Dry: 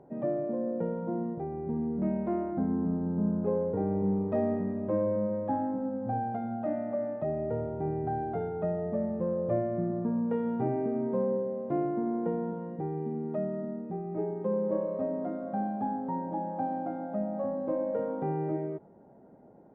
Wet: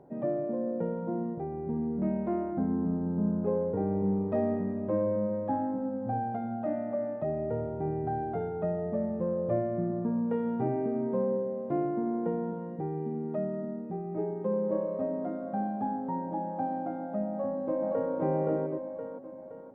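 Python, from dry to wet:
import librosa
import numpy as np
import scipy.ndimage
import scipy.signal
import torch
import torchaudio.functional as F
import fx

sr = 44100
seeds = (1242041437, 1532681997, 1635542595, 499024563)

y = fx.echo_throw(x, sr, start_s=17.3, length_s=0.84, ms=520, feedback_pct=45, wet_db=-0.5)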